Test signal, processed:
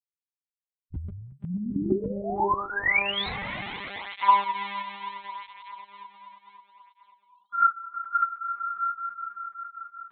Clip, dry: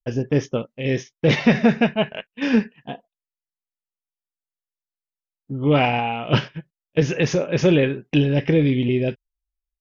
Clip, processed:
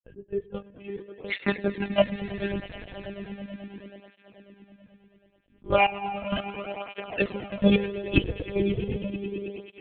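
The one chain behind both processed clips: per-bin expansion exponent 2; chopper 2.1 Hz, depth 60%, duty 30%; swelling echo 0.108 s, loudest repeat 5, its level -17 dB; monotone LPC vocoder at 8 kHz 200 Hz; tape flanging out of phase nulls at 0.36 Hz, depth 5.3 ms; gain +5.5 dB

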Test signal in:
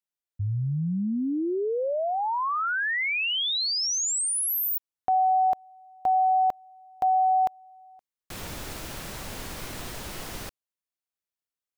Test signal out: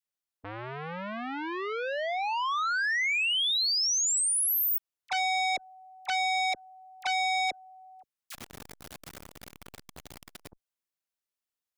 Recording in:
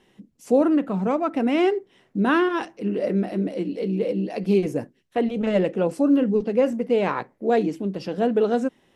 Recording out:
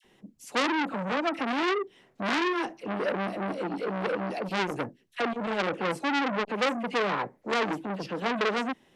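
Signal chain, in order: low shelf 470 Hz -2 dB; dispersion lows, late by 47 ms, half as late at 1200 Hz; core saturation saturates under 2800 Hz

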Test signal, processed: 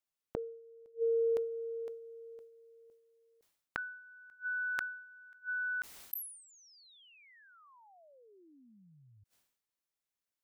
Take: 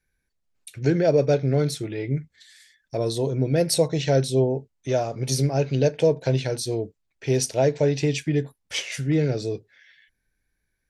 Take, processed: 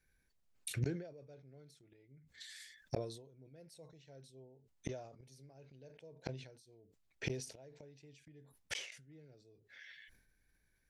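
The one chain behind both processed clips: flipped gate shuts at -23 dBFS, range -36 dB; sustainer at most 77 dB/s; gain -1.5 dB

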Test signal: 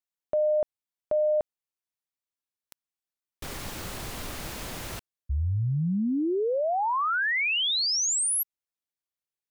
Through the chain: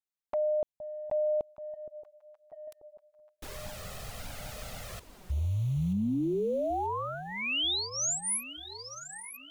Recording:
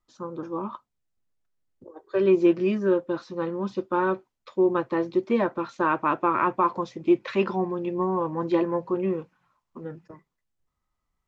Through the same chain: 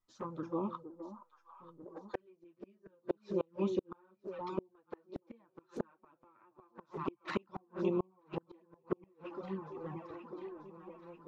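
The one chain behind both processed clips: echo with dull and thin repeats by turns 0.468 s, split 940 Hz, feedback 71%, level -10 dB; flipped gate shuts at -17 dBFS, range -37 dB; envelope flanger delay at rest 10.3 ms, full sweep at -27 dBFS; gain -3 dB

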